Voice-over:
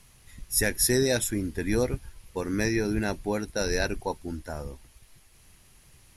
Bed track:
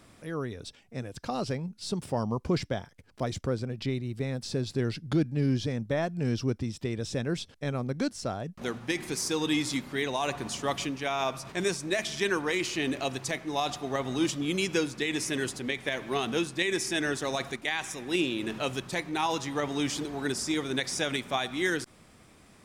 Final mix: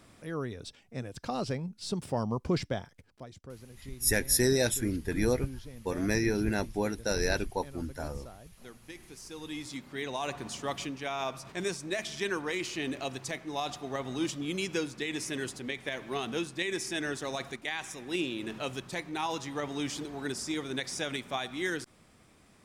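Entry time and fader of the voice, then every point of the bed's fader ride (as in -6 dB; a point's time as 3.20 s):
3.50 s, -2.0 dB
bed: 3.03 s -1.5 dB
3.26 s -16.5 dB
9.20 s -16.5 dB
10.15 s -4.5 dB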